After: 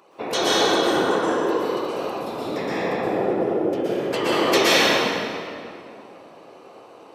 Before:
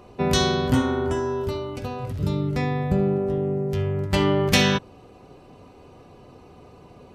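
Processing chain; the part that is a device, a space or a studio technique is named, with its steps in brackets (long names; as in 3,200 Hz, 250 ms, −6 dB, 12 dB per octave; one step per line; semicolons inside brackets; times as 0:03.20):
whispering ghost (random phases in short frames; high-pass filter 420 Hz 12 dB per octave; convolution reverb RT60 2.5 s, pre-delay 112 ms, DRR −8.5 dB)
level −3 dB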